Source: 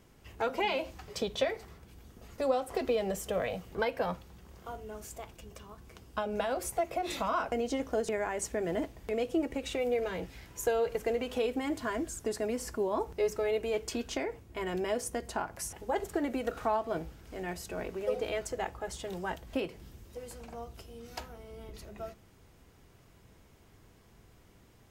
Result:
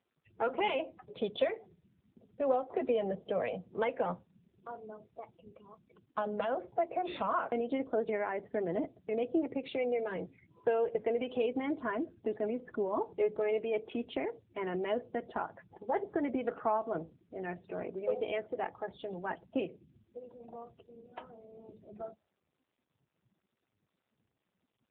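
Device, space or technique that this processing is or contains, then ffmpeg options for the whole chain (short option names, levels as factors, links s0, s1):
mobile call with aggressive noise cancelling: -filter_complex "[0:a]asplit=3[s0][s1][s2];[s0]afade=t=out:st=5.64:d=0.02[s3];[s1]highshelf=f=2200:g=2.5,afade=t=in:st=5.64:d=0.02,afade=t=out:st=6.29:d=0.02[s4];[s2]afade=t=in:st=6.29:d=0.02[s5];[s3][s4][s5]amix=inputs=3:normalize=0,highpass=130,afftdn=nr=35:nf=-45" -ar 8000 -c:a libopencore_amrnb -b:a 7950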